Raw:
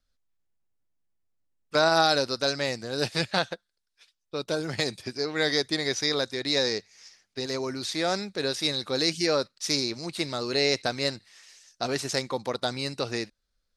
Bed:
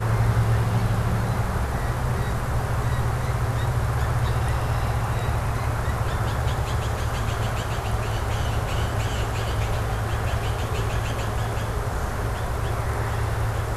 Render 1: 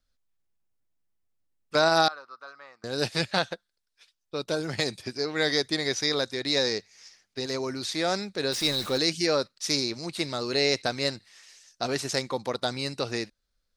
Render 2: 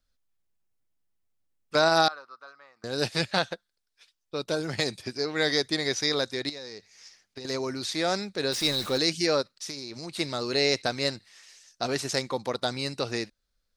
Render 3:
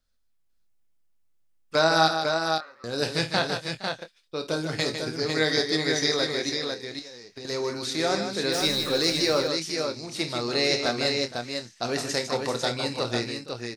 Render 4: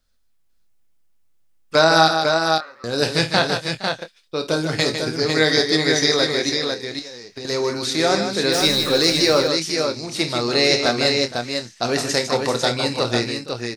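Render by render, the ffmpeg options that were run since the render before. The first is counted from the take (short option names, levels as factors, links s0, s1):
-filter_complex "[0:a]asettb=1/sr,asplit=3[s0][s1][s2];[s0]atrim=end=2.084[s3];[s1]atrim=start=2.08:end=2.84,asetpts=PTS-STARTPTS,afade=t=in:d=0.004:c=qsin,afade=t=out:st=0.756:d=0.004:c=qsin,bandpass=f=1200:t=q:w=7.7[s4];[s2]atrim=start=2.836[s5];[s3][s4]acrossfade=d=0.004:c1=hsin:c2=qsin[s6];[s6][s5]acrossfade=d=0.004:c1=qsin:c2=hsin,asettb=1/sr,asplit=3[s7][s8][s9];[s7]atrim=end=8.524[s10];[s8]atrim=start=8.52:end=8.98,asetpts=PTS-STARTPTS,afade=t=in:d=0.004:c=qsin,afade=t=out:st=0.456:d=0.004:c=qsin,aeval=exprs='val(0)+0.5*0.0211*sgn(val(0))':c=same[s11];[s9]atrim=start=8.976[s12];[s10][s11]acrossfade=d=0.004:c1=hsin:c2=qsin[s13];[s13][s12]acrossfade=d=0.004:c1=qsin:c2=hsin"
-filter_complex "[0:a]asettb=1/sr,asplit=3[s0][s1][s2];[s0]atrim=end=6.494[s3];[s1]atrim=start=6.49:end=7.45,asetpts=PTS-STARTPTS,afade=t=in:d=0.004:c=qsin,afade=t=out:st=0.956:d=0.004:c=qsin,acompressor=threshold=0.0178:ratio=12:attack=3.2:release=140:knee=1:detection=peak[s4];[s2]atrim=start=7.446[s5];[s3][s4]acrossfade=d=0.004:c1=hsin:c2=qsin[s6];[s6][s5]acrossfade=d=0.004:c1=qsin:c2=hsin,asplit=3[s7][s8][s9];[s7]afade=t=out:st=9.41:d=0.02[s10];[s8]acompressor=threshold=0.0224:ratio=6:attack=3.2:release=140:knee=1:detection=peak,afade=t=in:st=9.41:d=0.02,afade=t=out:st=10.15:d=0.02[s11];[s9]afade=t=in:st=10.15:d=0.02[s12];[s10][s11][s12]amix=inputs=3:normalize=0,asplit=2[s13][s14];[s13]atrim=end=2.76,asetpts=PTS-STARTPTS,afade=t=out:st=2.13:d=0.63:silence=0.421697[s15];[s14]atrim=start=2.76,asetpts=PTS-STARTPTS,afade=t=in:d=0.004:c=hsin:silence=0.421697[s16];[s15][s16]concat=n=2:v=0:a=1"
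-filter_complex "[0:a]asplit=2[s0][s1];[s1]adelay=25,volume=0.355[s2];[s0][s2]amix=inputs=2:normalize=0,aecho=1:1:51|154|466|499:0.237|0.422|0.141|0.562"
-af "volume=2.24,alimiter=limit=0.794:level=0:latency=1"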